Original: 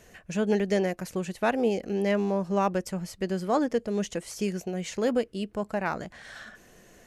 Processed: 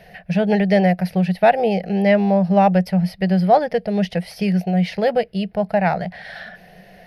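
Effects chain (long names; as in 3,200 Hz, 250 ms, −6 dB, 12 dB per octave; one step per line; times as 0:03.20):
drawn EQ curve 120 Hz 0 dB, 180 Hz +13 dB, 260 Hz −12 dB, 740 Hz +12 dB, 1,100 Hz −7 dB, 1,900 Hz +7 dB, 3,200 Hz +2 dB, 5,000 Hz +3 dB, 7,200 Hz −26 dB, 10,000 Hz −3 dB
level +5 dB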